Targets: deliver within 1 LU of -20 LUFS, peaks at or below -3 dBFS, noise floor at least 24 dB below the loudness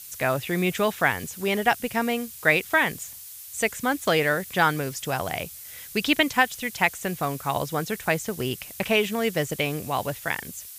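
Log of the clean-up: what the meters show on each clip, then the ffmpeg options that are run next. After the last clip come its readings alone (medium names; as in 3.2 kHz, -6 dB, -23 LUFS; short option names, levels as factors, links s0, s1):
noise floor -42 dBFS; noise floor target -49 dBFS; loudness -25.0 LUFS; peak level -5.0 dBFS; loudness target -20.0 LUFS
-> -af "afftdn=nr=7:nf=-42"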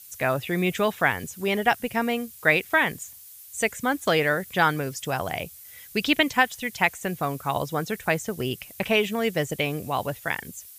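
noise floor -46 dBFS; noise floor target -49 dBFS
-> -af "afftdn=nr=6:nf=-46"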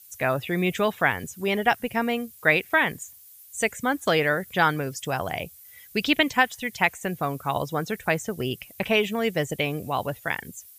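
noise floor -50 dBFS; loudness -25.0 LUFS; peak level -5.0 dBFS; loudness target -20.0 LUFS
-> -af "volume=1.78,alimiter=limit=0.708:level=0:latency=1"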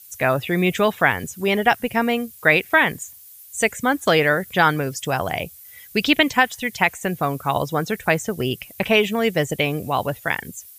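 loudness -20.5 LUFS; peak level -3.0 dBFS; noise floor -45 dBFS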